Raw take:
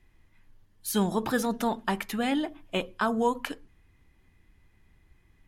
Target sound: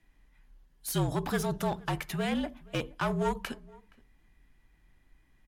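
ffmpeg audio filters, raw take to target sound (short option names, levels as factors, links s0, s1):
-filter_complex "[0:a]aeval=exprs='clip(val(0),-1,0.0376)':c=same,afreqshift=-49,asplit=2[s0][s1];[s1]adelay=472.3,volume=0.0631,highshelf=f=4000:g=-10.6[s2];[s0][s2]amix=inputs=2:normalize=0,volume=0.794"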